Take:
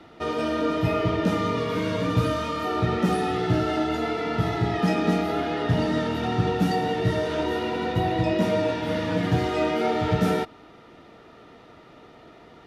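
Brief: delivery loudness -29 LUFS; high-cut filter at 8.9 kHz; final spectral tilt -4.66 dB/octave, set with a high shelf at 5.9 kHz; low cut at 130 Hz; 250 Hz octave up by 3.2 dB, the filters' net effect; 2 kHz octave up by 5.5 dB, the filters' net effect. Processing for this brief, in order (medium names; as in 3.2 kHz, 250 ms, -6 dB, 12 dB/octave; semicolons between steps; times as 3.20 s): high-pass 130 Hz; low-pass 8.9 kHz; peaking EQ 250 Hz +5 dB; peaking EQ 2 kHz +5.5 dB; treble shelf 5.9 kHz +8 dB; trim -6.5 dB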